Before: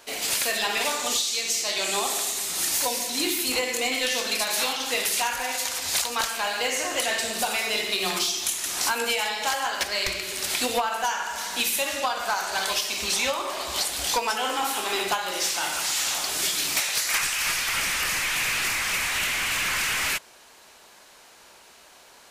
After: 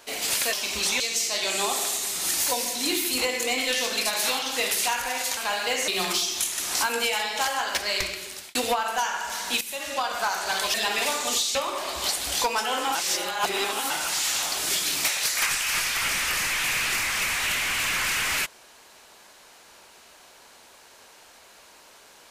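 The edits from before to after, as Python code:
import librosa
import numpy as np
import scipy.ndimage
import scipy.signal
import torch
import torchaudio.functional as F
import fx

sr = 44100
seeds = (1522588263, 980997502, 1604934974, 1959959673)

y = fx.edit(x, sr, fx.swap(start_s=0.53, length_s=0.81, other_s=12.8, other_length_s=0.47),
    fx.cut(start_s=5.71, length_s=0.6),
    fx.cut(start_s=6.82, length_s=1.12),
    fx.fade_out_span(start_s=10.07, length_s=0.54),
    fx.fade_in_from(start_s=11.67, length_s=0.47, floor_db=-14.0),
    fx.reverse_span(start_s=14.67, length_s=0.95), tone=tone)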